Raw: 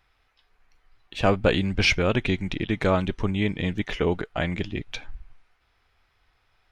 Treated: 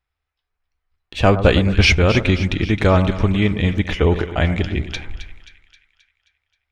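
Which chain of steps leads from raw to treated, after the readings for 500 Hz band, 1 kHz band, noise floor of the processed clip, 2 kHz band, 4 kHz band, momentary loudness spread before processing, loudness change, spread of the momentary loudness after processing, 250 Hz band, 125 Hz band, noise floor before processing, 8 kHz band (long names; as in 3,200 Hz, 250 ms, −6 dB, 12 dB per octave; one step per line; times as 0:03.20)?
+6.5 dB, +6.5 dB, −80 dBFS, +6.5 dB, +6.5 dB, 11 LU, +7.5 dB, 11 LU, +7.0 dB, +10.5 dB, −68 dBFS, +6.5 dB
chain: noise gate −51 dBFS, range −22 dB
parametric band 74 Hz +13 dB 0.55 octaves
on a send: echo with a time of its own for lows and highs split 1,500 Hz, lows 108 ms, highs 265 ms, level −11.5 dB
on the sum: level +6 dB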